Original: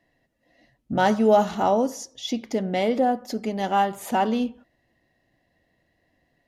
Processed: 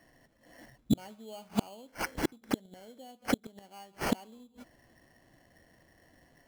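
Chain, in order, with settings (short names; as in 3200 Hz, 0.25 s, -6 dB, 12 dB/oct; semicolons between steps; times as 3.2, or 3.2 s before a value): flipped gate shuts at -20 dBFS, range -35 dB; sample-rate reducer 3700 Hz, jitter 0%; gain +6 dB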